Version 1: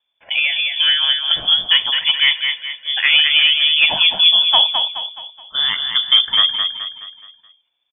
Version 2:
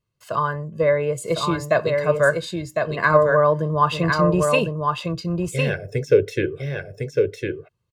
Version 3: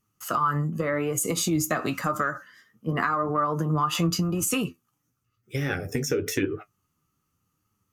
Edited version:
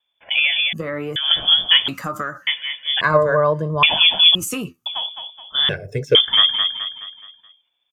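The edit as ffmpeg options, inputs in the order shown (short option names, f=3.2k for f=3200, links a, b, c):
-filter_complex "[2:a]asplit=3[a][b][c];[1:a]asplit=2[d][e];[0:a]asplit=6[f][g][h][i][j][k];[f]atrim=end=0.732[l];[a]atrim=start=0.728:end=1.162[m];[g]atrim=start=1.158:end=1.882[n];[b]atrim=start=1.878:end=2.472[o];[h]atrim=start=2.468:end=3.012[p];[d]atrim=start=3.008:end=3.832[q];[i]atrim=start=3.828:end=4.352[r];[c]atrim=start=4.348:end=4.862[s];[j]atrim=start=4.858:end=5.692[t];[e]atrim=start=5.688:end=6.152[u];[k]atrim=start=6.148[v];[l][m]acrossfade=d=0.004:c1=hsin:c2=hsin[w];[w][n]acrossfade=d=0.004:c1=hsin:c2=hsin[x];[x][o]acrossfade=d=0.004:c1=hsin:c2=hsin[y];[y][p]acrossfade=d=0.004:c1=hsin:c2=hsin[z];[z][q]acrossfade=d=0.004:c1=hsin:c2=hsin[aa];[aa][r]acrossfade=d=0.004:c1=hsin:c2=hsin[ab];[ab][s]acrossfade=d=0.004:c1=hsin:c2=hsin[ac];[ac][t]acrossfade=d=0.004:c1=hsin:c2=hsin[ad];[ad][u]acrossfade=d=0.004:c1=hsin:c2=hsin[ae];[ae][v]acrossfade=d=0.004:c1=hsin:c2=hsin"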